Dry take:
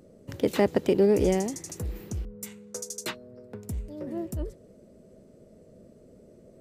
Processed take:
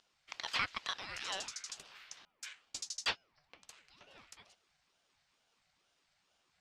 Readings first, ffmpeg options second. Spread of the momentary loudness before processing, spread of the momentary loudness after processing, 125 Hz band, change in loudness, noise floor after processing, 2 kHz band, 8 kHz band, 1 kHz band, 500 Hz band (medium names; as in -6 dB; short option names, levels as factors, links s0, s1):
19 LU, 22 LU, -28.5 dB, -11.0 dB, -78 dBFS, 0.0 dB, -7.0 dB, -6.5 dB, -30.0 dB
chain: -af "afreqshift=-180,asuperpass=centerf=2800:order=4:qfactor=0.85,aeval=exprs='val(0)*sin(2*PI*710*n/s+710*0.6/2.2*sin(2*PI*2.2*n/s))':c=same,volume=2.11"